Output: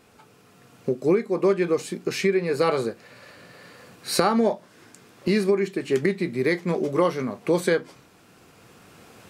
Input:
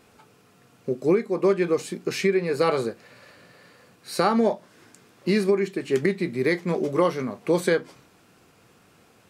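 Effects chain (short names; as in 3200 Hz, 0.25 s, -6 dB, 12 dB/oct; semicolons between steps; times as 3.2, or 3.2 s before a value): recorder AGC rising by 5.9 dB/s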